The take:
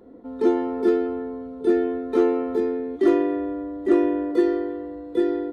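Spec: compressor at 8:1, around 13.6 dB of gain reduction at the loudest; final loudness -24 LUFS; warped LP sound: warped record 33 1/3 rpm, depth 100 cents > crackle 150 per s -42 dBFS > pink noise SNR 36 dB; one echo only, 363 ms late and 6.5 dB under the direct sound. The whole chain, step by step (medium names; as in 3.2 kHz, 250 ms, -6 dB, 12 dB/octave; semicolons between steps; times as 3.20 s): compression 8:1, threshold -28 dBFS; delay 363 ms -6.5 dB; warped record 33 1/3 rpm, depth 100 cents; crackle 150 per s -42 dBFS; pink noise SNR 36 dB; trim +7.5 dB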